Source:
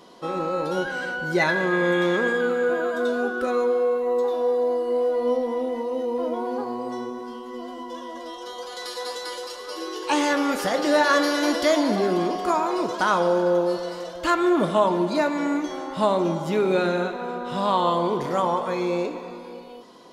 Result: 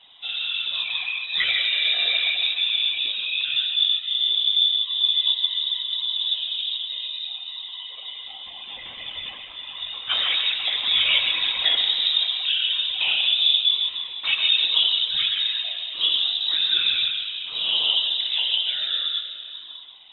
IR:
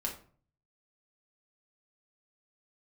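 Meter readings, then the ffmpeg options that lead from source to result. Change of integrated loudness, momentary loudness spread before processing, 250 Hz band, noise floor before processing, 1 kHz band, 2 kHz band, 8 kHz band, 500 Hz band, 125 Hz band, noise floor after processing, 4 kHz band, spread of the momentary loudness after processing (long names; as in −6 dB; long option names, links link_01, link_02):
+3.5 dB, 13 LU, below −30 dB, −38 dBFS, −18.5 dB, −0.5 dB, below −30 dB, −28.5 dB, below −20 dB, −39 dBFS, +18.5 dB, 15 LU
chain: -filter_complex "[0:a]asplit=2[link_01][link_02];[1:a]atrim=start_sample=2205,lowpass=3300,adelay=128[link_03];[link_02][link_03]afir=irnorm=-1:irlink=0,volume=-6dB[link_04];[link_01][link_04]amix=inputs=2:normalize=0,lowpass=frequency=3400:width_type=q:width=0.5098,lowpass=frequency=3400:width_type=q:width=0.6013,lowpass=frequency=3400:width_type=q:width=0.9,lowpass=frequency=3400:width_type=q:width=2.563,afreqshift=-4000,afftfilt=real='hypot(re,im)*cos(2*PI*random(0))':imag='hypot(re,im)*sin(2*PI*random(1))':win_size=512:overlap=0.75,volume=4dB"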